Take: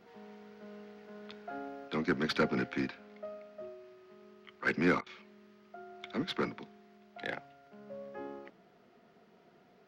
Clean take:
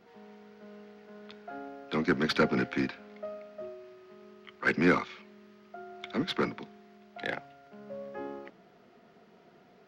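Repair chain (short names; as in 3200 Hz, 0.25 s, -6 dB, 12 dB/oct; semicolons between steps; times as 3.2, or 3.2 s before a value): clip repair -19.5 dBFS; interpolate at 5.01, 52 ms; gain 0 dB, from 1.88 s +4 dB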